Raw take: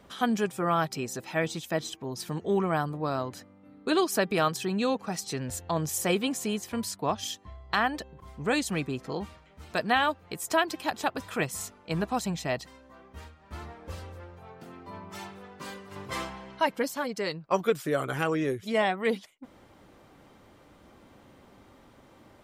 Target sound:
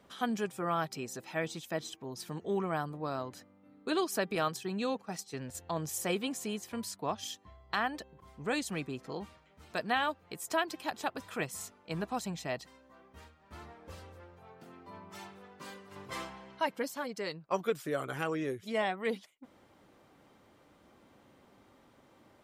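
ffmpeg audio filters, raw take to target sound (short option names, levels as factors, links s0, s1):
-filter_complex "[0:a]asettb=1/sr,asplit=3[s0][s1][s2];[s0]atrim=end=4.354[s3];[s1]atrim=start=4.35:end=5.55,asetpts=PTS-STARTPTS,afade=t=in:d=0.004:c=qsin,afade=t=out:st=1.196:d=0.004:c=qsin,agate=range=0.355:threshold=0.02:ratio=16:detection=peak[s4];[s2]atrim=start=5.546[s5];[s3][s4]acrossfade=d=0.004:c1=hsin:c2=qsin[s6];[s6][s5]acrossfade=d=0.004:c1=qsin:c2=hsin,lowshelf=f=62:g=-11.5,volume=0.501"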